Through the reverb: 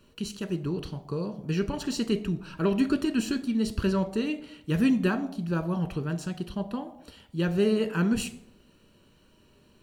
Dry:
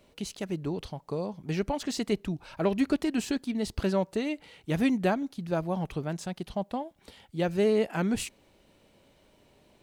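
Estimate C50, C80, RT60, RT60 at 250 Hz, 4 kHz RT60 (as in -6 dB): 15.0 dB, 17.5 dB, 0.70 s, 0.80 s, 0.40 s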